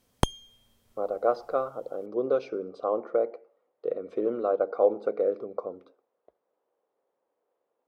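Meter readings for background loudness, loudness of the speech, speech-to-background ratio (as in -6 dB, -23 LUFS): -31.5 LUFS, -29.5 LUFS, 2.0 dB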